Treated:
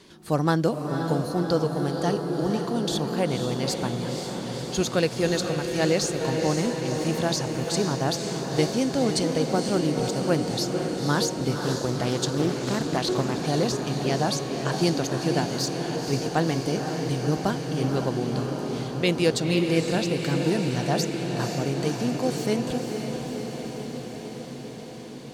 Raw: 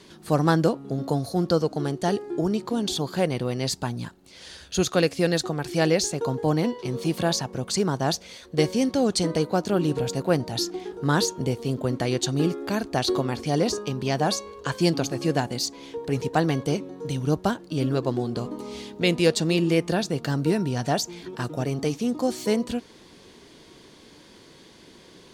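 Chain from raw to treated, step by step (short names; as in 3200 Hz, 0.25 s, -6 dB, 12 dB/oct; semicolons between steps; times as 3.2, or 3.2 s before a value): diffused feedback echo 0.512 s, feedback 75%, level -6 dB; 11.65–13.44 Doppler distortion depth 0.28 ms; gain -2 dB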